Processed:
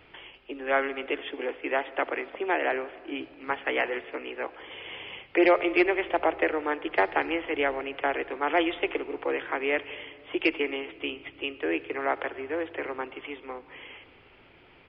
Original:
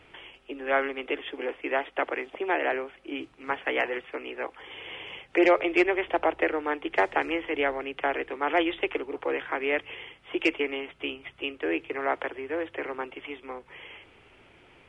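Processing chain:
on a send at −17 dB: convolution reverb RT60 2.3 s, pre-delay 58 ms
on the sum: downsampling to 11,025 Hz

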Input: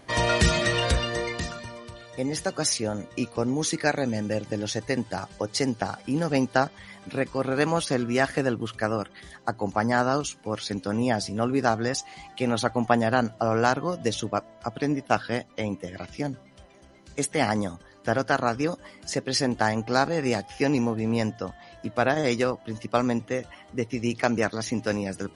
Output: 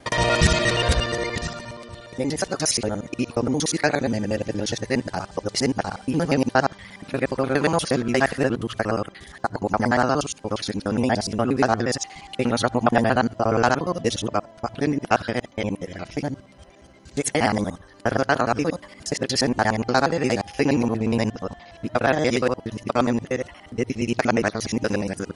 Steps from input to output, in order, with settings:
reversed piece by piece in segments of 59 ms
level +3.5 dB

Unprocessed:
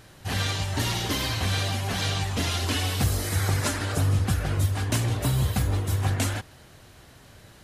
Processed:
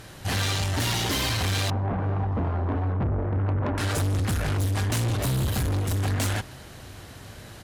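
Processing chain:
0:01.70–0:03.78: low-pass filter 1,100 Hz 24 dB per octave
tube saturation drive 30 dB, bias 0.35
slap from a distant wall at 210 metres, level −24 dB
level +7.5 dB

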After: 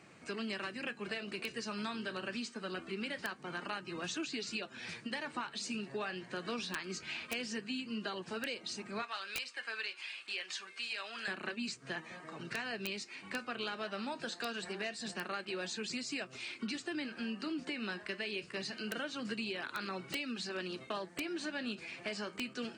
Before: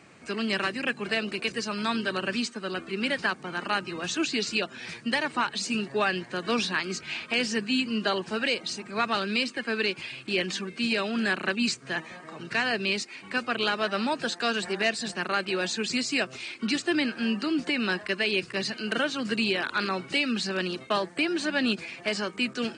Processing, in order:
0:09.02–0:11.28: high-pass filter 920 Hz 12 dB per octave
downward compressor 4 to 1, threshold −32 dBFS, peak gain reduction 10 dB
flanger 0.25 Hz, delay 5.4 ms, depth 9.7 ms, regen −69%
wrap-around overflow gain 25.5 dB
level −1 dB

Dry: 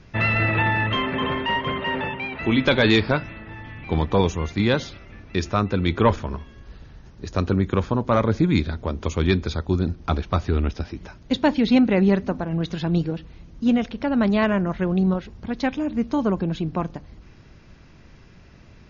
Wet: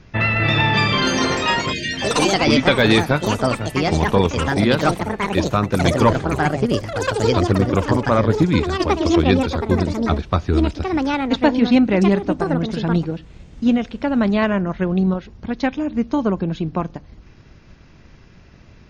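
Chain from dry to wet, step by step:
time-frequency box erased 0:01.72–0:02.27, 270–1,500 Hz
delay with pitch and tempo change per echo 328 ms, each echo +5 semitones, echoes 3
transient designer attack +2 dB, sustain −2 dB
level +2 dB

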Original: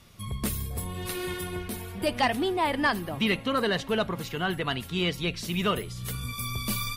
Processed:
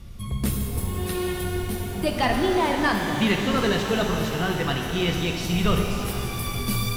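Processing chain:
wind on the microphone 91 Hz −42 dBFS
low-shelf EQ 290 Hz +5.5 dB
reverb with rising layers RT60 3.2 s, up +12 semitones, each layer −8 dB, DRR 2 dB

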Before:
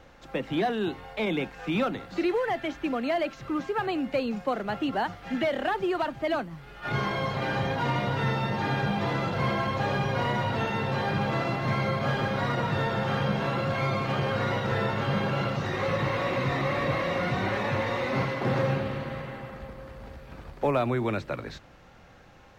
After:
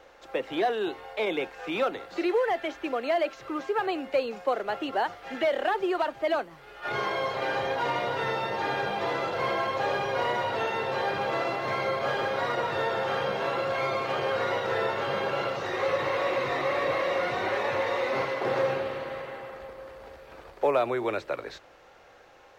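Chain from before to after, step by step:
low shelf with overshoot 290 Hz −12 dB, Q 1.5

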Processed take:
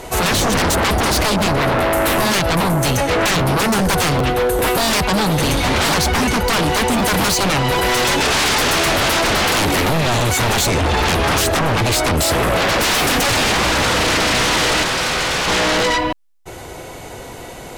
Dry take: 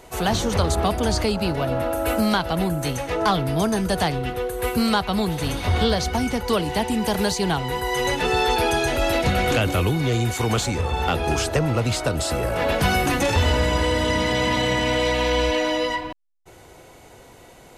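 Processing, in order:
sine wavefolder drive 15 dB, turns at −8 dBFS
0:14.83–0:15.48: ring modulation 1,000 Hz
regular buffer underruns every 0.40 s, samples 512, repeat, from 0:00.58
level −5 dB

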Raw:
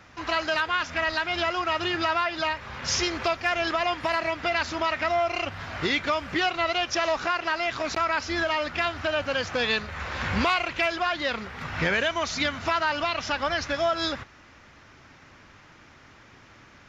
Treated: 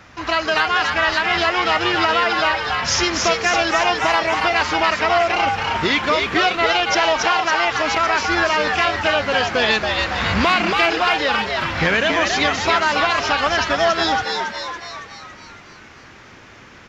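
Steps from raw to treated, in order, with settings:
echo with shifted repeats 279 ms, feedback 56%, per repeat +120 Hz, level −3.5 dB
level +6.5 dB

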